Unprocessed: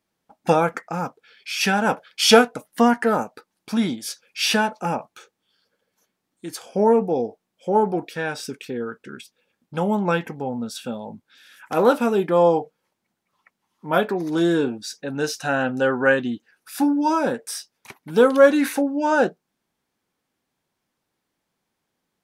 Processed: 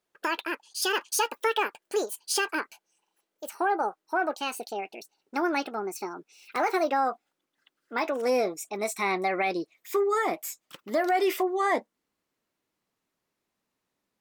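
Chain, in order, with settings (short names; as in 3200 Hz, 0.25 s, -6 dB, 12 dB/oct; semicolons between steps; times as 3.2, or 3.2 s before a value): speed glide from 198% -> 115%; limiter -12.5 dBFS, peak gain reduction 9.5 dB; gain -4.5 dB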